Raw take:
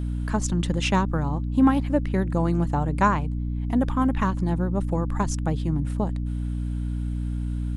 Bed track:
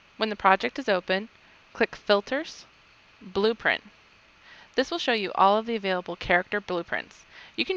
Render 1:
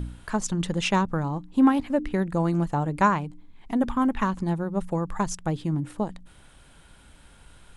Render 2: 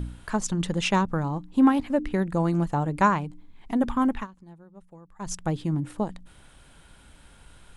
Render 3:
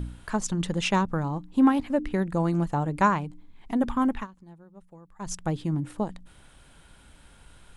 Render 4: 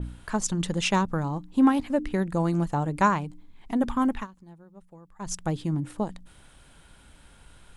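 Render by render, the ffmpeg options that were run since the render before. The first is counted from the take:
-af "bandreject=f=60:t=h:w=4,bandreject=f=120:t=h:w=4,bandreject=f=180:t=h:w=4,bandreject=f=240:t=h:w=4,bandreject=f=300:t=h:w=4"
-filter_complex "[0:a]asplit=3[a][b][c];[a]atrim=end=4.27,asetpts=PTS-STARTPTS,afade=t=out:st=4.14:d=0.13:silence=0.0841395[d];[b]atrim=start=4.27:end=5.19,asetpts=PTS-STARTPTS,volume=-21.5dB[e];[c]atrim=start=5.19,asetpts=PTS-STARTPTS,afade=t=in:d=0.13:silence=0.0841395[f];[d][e][f]concat=n=3:v=0:a=1"
-af "volume=-1dB"
-af "adynamicequalizer=threshold=0.00794:dfrequency=3800:dqfactor=0.7:tfrequency=3800:tqfactor=0.7:attack=5:release=100:ratio=0.375:range=2:mode=boostabove:tftype=highshelf"

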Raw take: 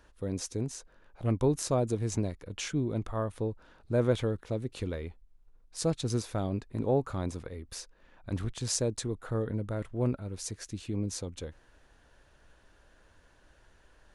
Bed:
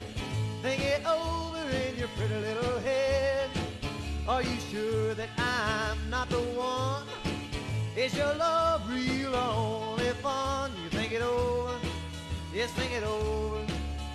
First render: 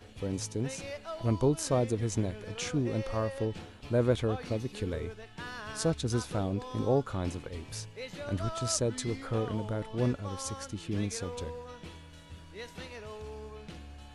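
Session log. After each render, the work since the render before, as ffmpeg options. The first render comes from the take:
-filter_complex "[1:a]volume=-12.5dB[a];[0:a][a]amix=inputs=2:normalize=0"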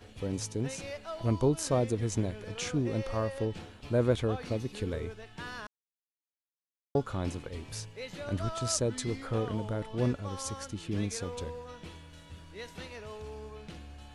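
-filter_complex "[0:a]asplit=3[a][b][c];[a]atrim=end=5.67,asetpts=PTS-STARTPTS,afade=t=out:st=5.666:d=0.004:c=hsin[d];[b]atrim=start=5.67:end=6.95,asetpts=PTS-STARTPTS,volume=0[e];[c]atrim=start=6.95,asetpts=PTS-STARTPTS,afade=t=in:d=0.004:c=hsin[f];[d][e][f]concat=n=3:v=0:a=1"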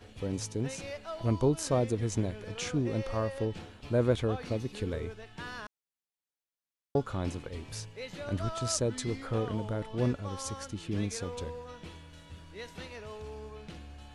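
-af "highshelf=f=9.9k:g=-3.5"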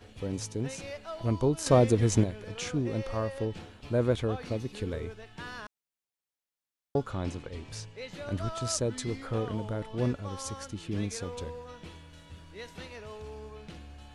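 -filter_complex "[0:a]asettb=1/sr,asplit=3[a][b][c];[a]atrim=end=1.664[d];[b]atrim=start=1.66:end=2.24,asetpts=PTS-STARTPTS,afade=t=in:d=0.004:c=qsin,afade=t=out:st=0.576:d=0.004:c=qsin,acontrast=76[e];[c]atrim=start=2.236[f];[d][e]acrossfade=d=0.004:c1=hsin:c2=qsin[g];[g][f]acrossfade=d=0.004:c1=qsin:c2=hsin,asettb=1/sr,asplit=3[h][i][j];[h]atrim=end=7.114[k];[i]atrim=start=7.11:end=8.12,asetpts=PTS-STARTPTS,afade=t=in:d=0.004:c=qsin,afade=t=out:st=1.006:d=0.004:c=qsin,lowpass=8.7k[l];[j]atrim=start=8.116[m];[k][l]acrossfade=d=0.004:c1=hsin:c2=qsin[n];[n][m]acrossfade=d=0.004:c1=qsin:c2=hsin"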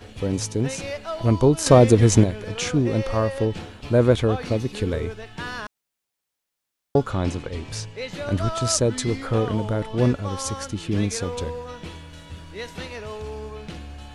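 -af "volume=9.5dB,alimiter=limit=-3dB:level=0:latency=1"

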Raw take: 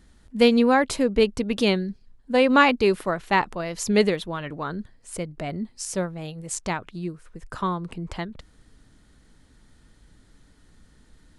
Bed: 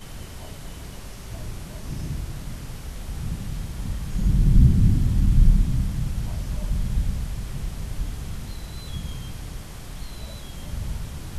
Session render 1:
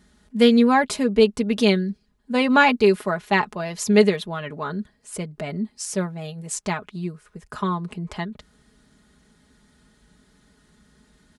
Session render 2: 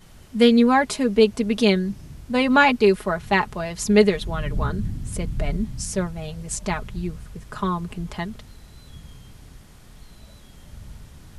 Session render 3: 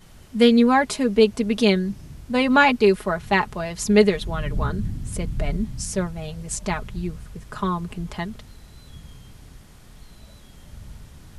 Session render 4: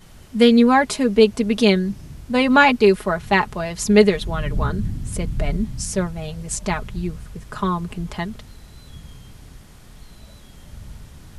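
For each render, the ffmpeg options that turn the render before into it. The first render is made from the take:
-af "highpass=70,aecho=1:1:4.8:0.65"
-filter_complex "[1:a]volume=-10.5dB[a];[0:a][a]amix=inputs=2:normalize=0"
-af anull
-af "volume=2.5dB,alimiter=limit=-2dB:level=0:latency=1"

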